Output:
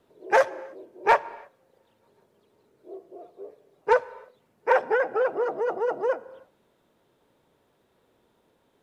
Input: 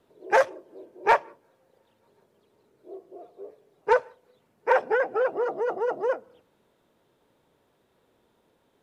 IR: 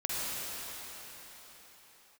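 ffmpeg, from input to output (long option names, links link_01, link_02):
-filter_complex "[0:a]asplit=2[link_01][link_02];[1:a]atrim=start_sample=2205,afade=type=out:start_time=0.37:duration=0.01,atrim=end_sample=16758,highshelf=frequency=4600:gain=-10[link_03];[link_02][link_03]afir=irnorm=-1:irlink=0,volume=-23dB[link_04];[link_01][link_04]amix=inputs=2:normalize=0"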